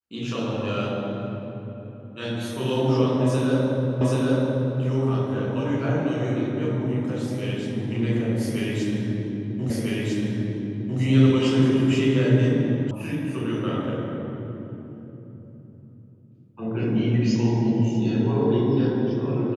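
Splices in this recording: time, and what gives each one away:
0:04.01: the same again, the last 0.78 s
0:09.70: the same again, the last 1.3 s
0:12.91: cut off before it has died away

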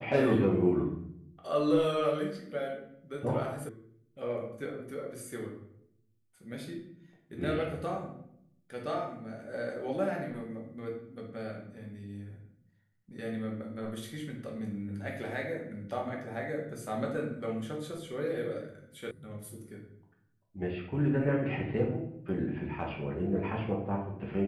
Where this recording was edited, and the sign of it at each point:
0:03.69: cut off before it has died away
0:19.11: cut off before it has died away

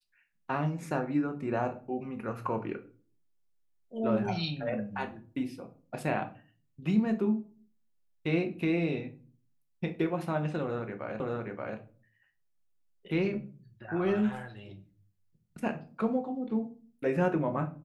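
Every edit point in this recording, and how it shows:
0:11.20: the same again, the last 0.58 s

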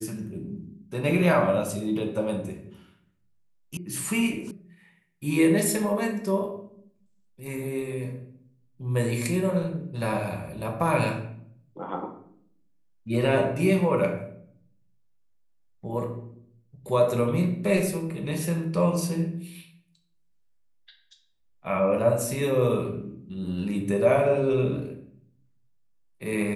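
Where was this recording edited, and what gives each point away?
0:03.77: cut off before it has died away
0:04.51: cut off before it has died away

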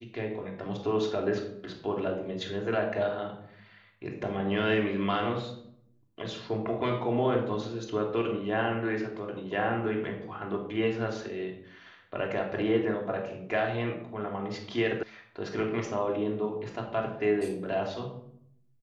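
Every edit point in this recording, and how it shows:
0:15.03: cut off before it has died away

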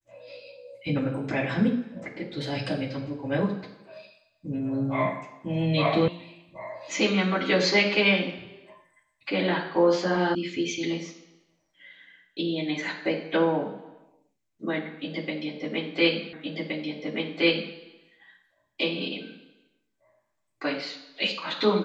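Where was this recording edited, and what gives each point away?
0:06.08: cut off before it has died away
0:10.35: cut off before it has died away
0:16.33: the same again, the last 1.42 s

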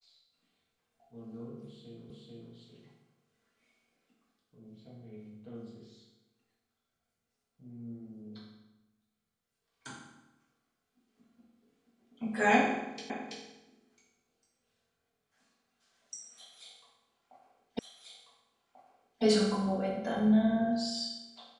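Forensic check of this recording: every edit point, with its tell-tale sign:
0:02.10: the same again, the last 0.44 s
0:13.10: the same again, the last 0.33 s
0:17.79: the same again, the last 1.44 s

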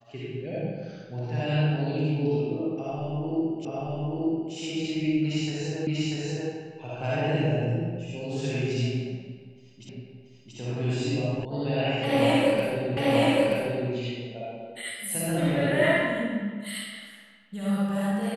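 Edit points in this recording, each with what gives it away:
0:03.65: the same again, the last 0.88 s
0:05.87: the same again, the last 0.64 s
0:09.89: the same again, the last 0.68 s
0:11.45: cut off before it has died away
0:12.97: the same again, the last 0.93 s

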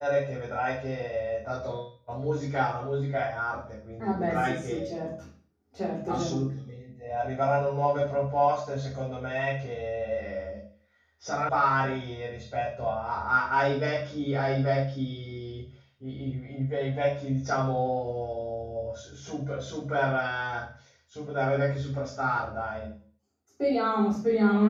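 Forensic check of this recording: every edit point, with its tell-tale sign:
0:11.49: cut off before it has died away

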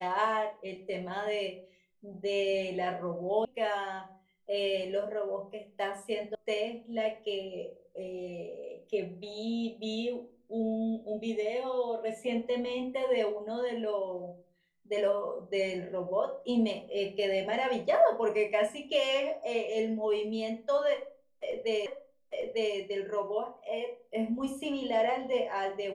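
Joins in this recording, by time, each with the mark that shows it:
0:03.45: cut off before it has died away
0:06.35: cut off before it has died away
0:21.86: the same again, the last 0.9 s

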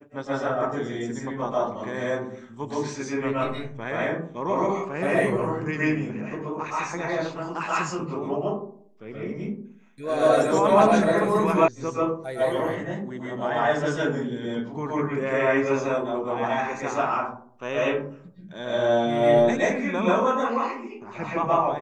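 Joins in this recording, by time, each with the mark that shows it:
0:11.68: cut off before it has died away

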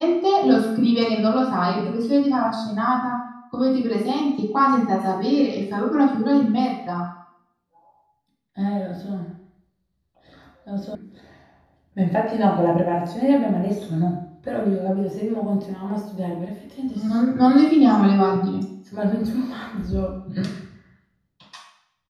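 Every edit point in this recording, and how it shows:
0:10.95: cut off before it has died away

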